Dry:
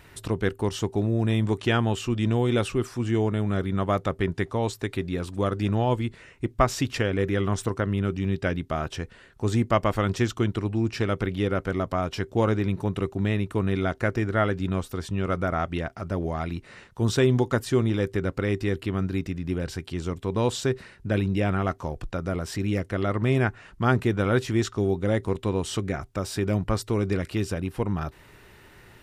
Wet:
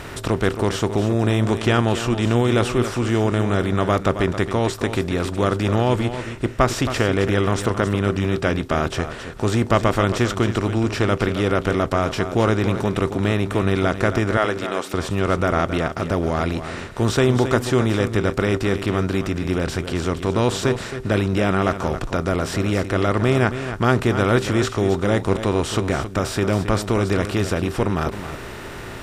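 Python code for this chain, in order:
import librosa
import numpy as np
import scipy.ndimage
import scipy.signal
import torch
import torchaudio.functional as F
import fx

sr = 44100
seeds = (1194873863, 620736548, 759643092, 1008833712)

y = fx.bin_compress(x, sr, power=0.6)
y = fx.highpass(y, sr, hz=380.0, slope=12, at=(14.37, 14.94))
y = y + 10.0 ** (-10.5 / 20.0) * np.pad(y, (int(270 * sr / 1000.0), 0))[:len(y)]
y = y * librosa.db_to_amplitude(1.5)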